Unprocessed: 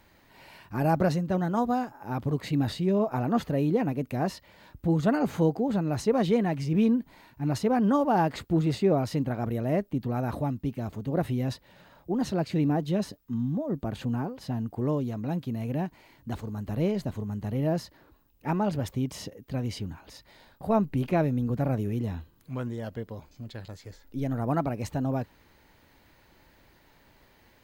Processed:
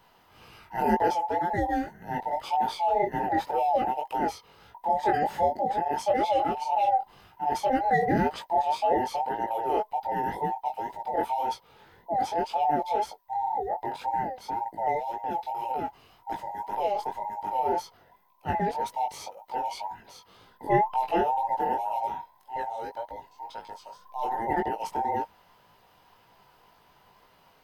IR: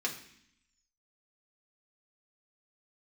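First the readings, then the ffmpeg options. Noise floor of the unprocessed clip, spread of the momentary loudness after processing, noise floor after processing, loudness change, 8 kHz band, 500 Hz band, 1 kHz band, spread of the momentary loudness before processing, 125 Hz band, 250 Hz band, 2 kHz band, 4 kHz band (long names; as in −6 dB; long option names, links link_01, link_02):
−61 dBFS, 13 LU, −61 dBFS, 0.0 dB, can't be measured, −0.5 dB, +9.5 dB, 14 LU, −14.0 dB, −9.0 dB, +3.0 dB, 0.0 dB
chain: -af "afftfilt=real='real(if(between(b,1,1008),(2*floor((b-1)/48)+1)*48-b,b),0)':imag='imag(if(between(b,1,1008),(2*floor((b-1)/48)+1)*48-b,b),0)*if(between(b,1,1008),-1,1)':win_size=2048:overlap=0.75,flanger=delay=17.5:depth=4.8:speed=1.9,bandreject=frequency=7100:width=8.6,volume=2.5dB"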